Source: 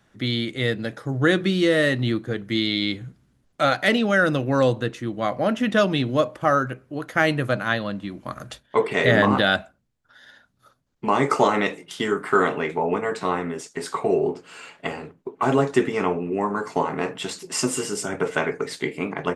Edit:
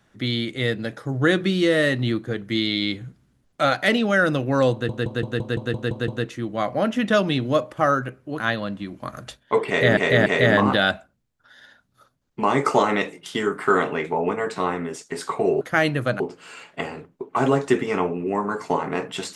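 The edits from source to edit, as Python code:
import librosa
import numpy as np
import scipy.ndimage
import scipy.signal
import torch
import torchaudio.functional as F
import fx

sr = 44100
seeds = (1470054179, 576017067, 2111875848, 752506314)

y = fx.edit(x, sr, fx.stutter(start_s=4.72, slice_s=0.17, count=9),
    fx.move(start_s=7.04, length_s=0.59, to_s=14.26),
    fx.repeat(start_s=8.91, length_s=0.29, count=3), tone=tone)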